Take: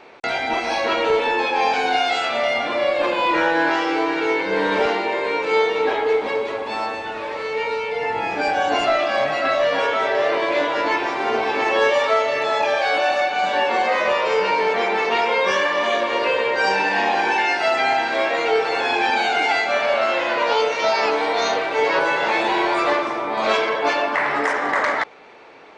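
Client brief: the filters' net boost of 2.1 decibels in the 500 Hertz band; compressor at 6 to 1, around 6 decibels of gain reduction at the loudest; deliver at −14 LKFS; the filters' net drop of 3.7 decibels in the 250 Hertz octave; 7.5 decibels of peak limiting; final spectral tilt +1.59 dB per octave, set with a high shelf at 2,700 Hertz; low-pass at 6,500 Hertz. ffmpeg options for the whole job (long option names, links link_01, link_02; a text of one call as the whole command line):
ffmpeg -i in.wav -af "lowpass=6500,equalizer=frequency=250:width_type=o:gain=-8.5,equalizer=frequency=500:width_type=o:gain=4,highshelf=frequency=2700:gain=8.5,acompressor=threshold=-19dB:ratio=6,volume=10dB,alimiter=limit=-6dB:level=0:latency=1" out.wav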